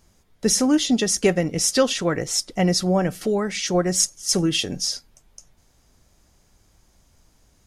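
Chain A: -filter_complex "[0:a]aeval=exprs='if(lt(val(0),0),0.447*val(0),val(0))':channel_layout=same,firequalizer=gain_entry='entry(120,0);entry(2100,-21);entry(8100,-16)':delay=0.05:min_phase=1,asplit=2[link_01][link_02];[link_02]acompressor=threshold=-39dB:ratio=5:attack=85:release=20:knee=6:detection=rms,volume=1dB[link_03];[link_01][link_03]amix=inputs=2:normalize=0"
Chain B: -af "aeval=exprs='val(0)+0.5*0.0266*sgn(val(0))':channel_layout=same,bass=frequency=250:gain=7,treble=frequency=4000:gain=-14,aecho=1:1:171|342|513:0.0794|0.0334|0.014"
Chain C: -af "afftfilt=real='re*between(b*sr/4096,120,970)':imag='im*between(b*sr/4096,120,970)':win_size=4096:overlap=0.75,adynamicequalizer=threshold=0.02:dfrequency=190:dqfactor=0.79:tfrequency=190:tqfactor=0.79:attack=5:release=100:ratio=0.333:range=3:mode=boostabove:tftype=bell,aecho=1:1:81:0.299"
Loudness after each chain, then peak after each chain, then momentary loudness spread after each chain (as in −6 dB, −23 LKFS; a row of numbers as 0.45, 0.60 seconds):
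−26.0, −19.5, −19.5 LKFS; −9.0, −4.0, −4.0 dBFS; 9, 20, 11 LU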